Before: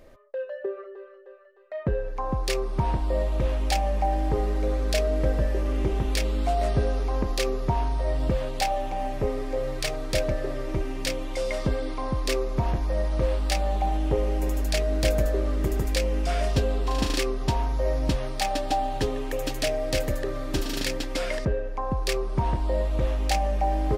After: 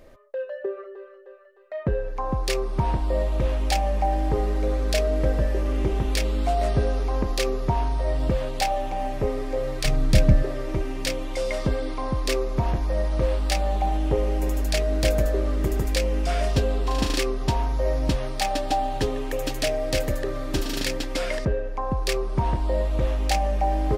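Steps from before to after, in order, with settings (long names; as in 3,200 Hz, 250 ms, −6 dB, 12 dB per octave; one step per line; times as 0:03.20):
0:09.85–0:10.43: low shelf with overshoot 290 Hz +10.5 dB, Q 1.5
level +1.5 dB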